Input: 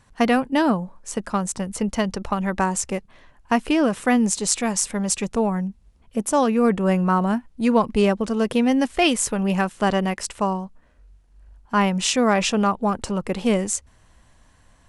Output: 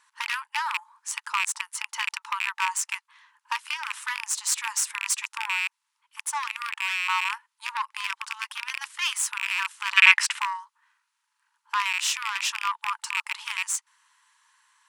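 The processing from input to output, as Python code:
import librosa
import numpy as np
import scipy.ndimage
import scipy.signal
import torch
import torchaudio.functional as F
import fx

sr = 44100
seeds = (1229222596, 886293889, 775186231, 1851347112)

p1 = fx.rattle_buzz(x, sr, strikes_db=-25.0, level_db=-11.0)
p2 = fx.tube_stage(p1, sr, drive_db=16.0, bias=0.45)
p3 = fx.rider(p2, sr, range_db=10, speed_s=0.5)
p4 = p2 + (p3 * 10.0 ** (-0.5 / 20.0))
p5 = fx.brickwall_highpass(p4, sr, low_hz=850.0)
p6 = fx.peak_eq(p5, sr, hz=2100.0, db=14.0, octaves=2.5, at=(9.97, 10.39))
y = p6 * 10.0 ** (-5.5 / 20.0)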